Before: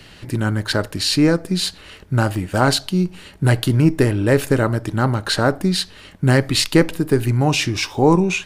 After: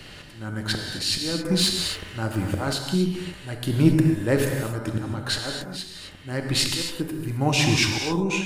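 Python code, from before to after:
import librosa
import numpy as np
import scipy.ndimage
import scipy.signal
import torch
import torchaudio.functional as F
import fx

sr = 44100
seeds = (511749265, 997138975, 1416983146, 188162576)

y = fx.auto_swell(x, sr, attack_ms=654.0)
y = fx.rev_gated(y, sr, seeds[0], gate_ms=290, shape='flat', drr_db=2.0)
y = fx.leveller(y, sr, passes=1, at=(1.45, 2.73))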